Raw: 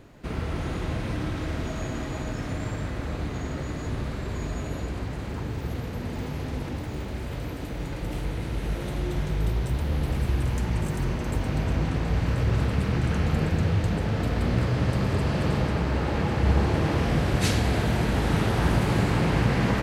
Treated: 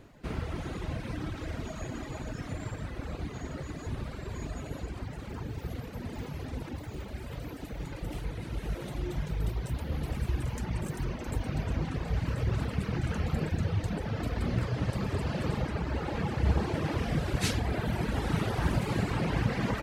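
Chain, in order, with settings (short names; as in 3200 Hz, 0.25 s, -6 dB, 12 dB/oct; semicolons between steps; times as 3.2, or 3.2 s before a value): reverb removal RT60 1.7 s; gain -3 dB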